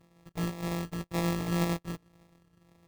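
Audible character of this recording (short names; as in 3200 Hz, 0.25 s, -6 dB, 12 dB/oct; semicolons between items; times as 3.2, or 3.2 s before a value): a buzz of ramps at a fixed pitch in blocks of 256 samples; phasing stages 8, 1.9 Hz, lowest notch 530–4900 Hz; aliases and images of a low sample rate 1500 Hz, jitter 0%; Vorbis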